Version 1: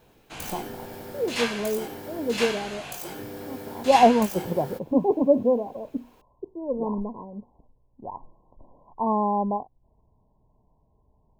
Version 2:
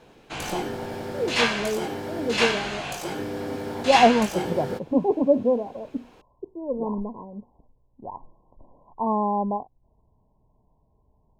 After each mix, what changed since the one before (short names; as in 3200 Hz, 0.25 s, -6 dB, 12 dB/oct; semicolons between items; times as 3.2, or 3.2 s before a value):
background +7.0 dB; master: add air absorption 56 m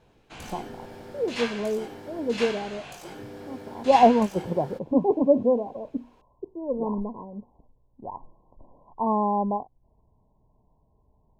background -10.0 dB